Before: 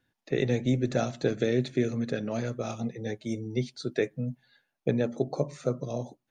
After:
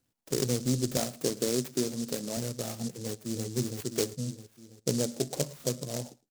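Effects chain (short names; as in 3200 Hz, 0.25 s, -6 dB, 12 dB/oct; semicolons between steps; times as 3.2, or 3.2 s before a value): 0.97–2.37 HPF 160 Hz 12 dB/oct; 3.02–3.47 echo throw 0.33 s, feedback 55%, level -2 dB; echo 0.11 s -22.5 dB; noise-modulated delay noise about 6000 Hz, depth 0.18 ms; gain -2.5 dB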